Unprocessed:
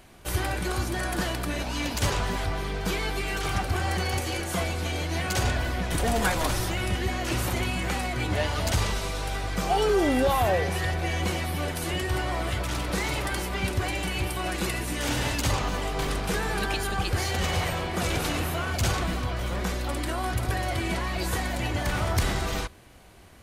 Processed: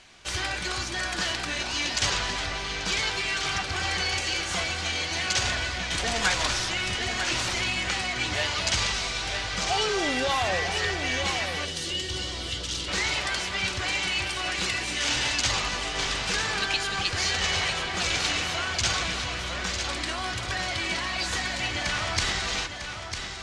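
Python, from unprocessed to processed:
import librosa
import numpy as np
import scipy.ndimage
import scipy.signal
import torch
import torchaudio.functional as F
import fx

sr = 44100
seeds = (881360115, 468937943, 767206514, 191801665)

p1 = x + fx.echo_single(x, sr, ms=950, db=-7.5, dry=0)
p2 = fx.spec_box(p1, sr, start_s=11.65, length_s=1.23, low_hz=560.0, high_hz=2700.0, gain_db=-10)
p3 = scipy.signal.sosfilt(scipy.signal.butter(4, 6800.0, 'lowpass', fs=sr, output='sos'), p2)
p4 = fx.tilt_shelf(p3, sr, db=-8.5, hz=1200.0)
y = p4 + 10.0 ** (-16.5 / 20.0) * np.pad(p4, (int(271 * sr / 1000.0), 0))[:len(p4)]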